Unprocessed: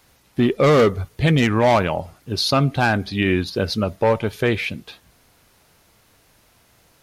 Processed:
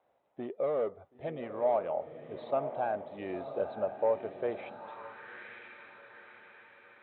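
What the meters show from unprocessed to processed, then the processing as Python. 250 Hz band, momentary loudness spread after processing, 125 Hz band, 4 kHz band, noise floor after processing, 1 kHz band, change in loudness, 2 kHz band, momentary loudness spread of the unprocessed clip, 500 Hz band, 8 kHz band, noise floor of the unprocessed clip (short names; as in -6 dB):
-23.0 dB, 21 LU, -30.5 dB, under -30 dB, -72 dBFS, -13.5 dB, -15.5 dB, -22.0 dB, 10 LU, -11.5 dB, under -40 dB, -58 dBFS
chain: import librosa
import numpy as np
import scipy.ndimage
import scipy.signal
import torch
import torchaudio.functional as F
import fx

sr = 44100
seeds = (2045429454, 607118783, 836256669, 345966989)

p1 = scipy.signal.sosfilt(scipy.signal.cheby1(8, 1.0, 3900.0, 'lowpass', fs=sr, output='sos'), x)
p2 = fx.rider(p1, sr, range_db=4, speed_s=0.5)
p3 = p2 + fx.echo_diffused(p2, sr, ms=987, feedback_pct=50, wet_db=-9.0, dry=0)
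p4 = fx.filter_sweep_bandpass(p3, sr, from_hz=630.0, to_hz=1500.0, start_s=4.53, end_s=5.2, q=2.9)
y = p4 * 10.0 ** (-7.5 / 20.0)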